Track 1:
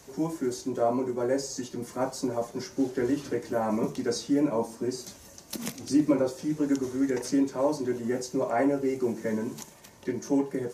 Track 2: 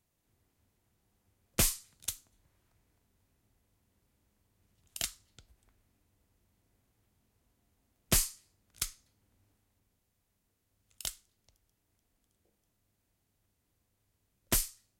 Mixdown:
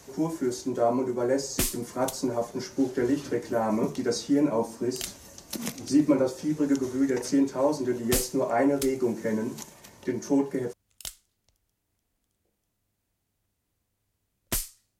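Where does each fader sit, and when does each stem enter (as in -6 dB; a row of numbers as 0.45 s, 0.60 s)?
+1.5 dB, 0.0 dB; 0.00 s, 0.00 s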